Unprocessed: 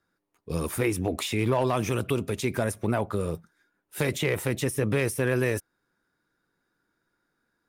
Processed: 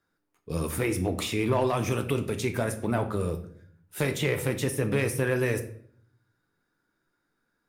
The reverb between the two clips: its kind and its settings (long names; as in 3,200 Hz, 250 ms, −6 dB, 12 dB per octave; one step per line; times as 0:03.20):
rectangular room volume 87 cubic metres, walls mixed, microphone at 0.37 metres
level −1.5 dB